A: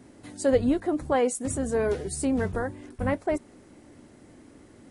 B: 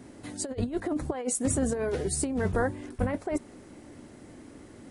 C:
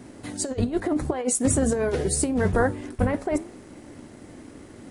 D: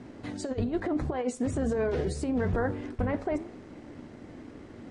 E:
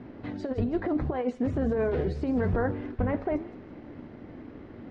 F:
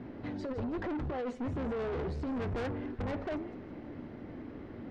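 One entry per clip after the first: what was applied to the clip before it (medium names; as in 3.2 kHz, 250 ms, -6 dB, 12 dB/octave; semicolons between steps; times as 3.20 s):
compressor with a negative ratio -27 dBFS, ratio -0.5
flange 0.78 Hz, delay 5.3 ms, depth 8.1 ms, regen -86%; in parallel at -9 dB: crossover distortion -54 dBFS; on the sum: trim +7.5 dB
peak limiter -18.5 dBFS, peak gain reduction 9.5 dB; distance through air 130 m; on a send at -19 dB: reverberation RT60 0.70 s, pre-delay 3 ms; on the sum: trim -1.5 dB
distance through air 280 m; feedback echo behind a high-pass 163 ms, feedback 50%, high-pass 3.7 kHz, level -8 dB; trim +2 dB
saturation -32.5 dBFS, distortion -7 dB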